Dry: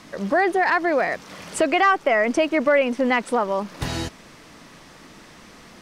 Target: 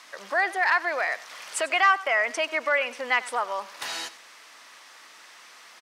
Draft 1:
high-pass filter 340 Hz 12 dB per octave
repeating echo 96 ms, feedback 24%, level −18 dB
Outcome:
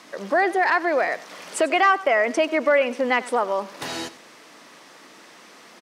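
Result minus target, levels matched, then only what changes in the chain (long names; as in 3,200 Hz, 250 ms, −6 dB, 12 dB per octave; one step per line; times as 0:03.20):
250 Hz band +13.0 dB
change: high-pass filter 990 Hz 12 dB per octave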